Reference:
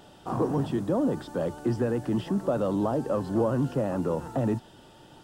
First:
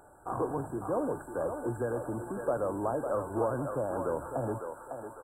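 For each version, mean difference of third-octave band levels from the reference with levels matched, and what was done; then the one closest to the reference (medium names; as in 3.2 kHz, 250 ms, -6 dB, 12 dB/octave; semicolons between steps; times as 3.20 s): 9.0 dB: FFT band-reject 1.7–7.4 kHz; peaking EQ 190 Hz -14 dB 1.4 oct; resampled via 32 kHz; thinning echo 553 ms, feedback 53%, high-pass 610 Hz, level -3.5 dB; trim -1 dB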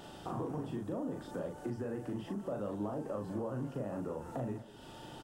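4.0 dB: dynamic bell 4.2 kHz, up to -5 dB, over -59 dBFS, Q 2; compression 3:1, threshold -43 dBFS, peak gain reduction 16.5 dB; doubling 39 ms -4 dB; speakerphone echo 200 ms, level -14 dB; trim +1 dB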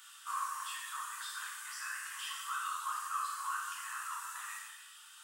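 26.5 dB: steep high-pass 1.1 kHz 72 dB/octave; reverb removal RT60 0.99 s; resonant high shelf 6.2 kHz +6.5 dB, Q 1.5; gated-style reverb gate 460 ms falling, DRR -5.5 dB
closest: second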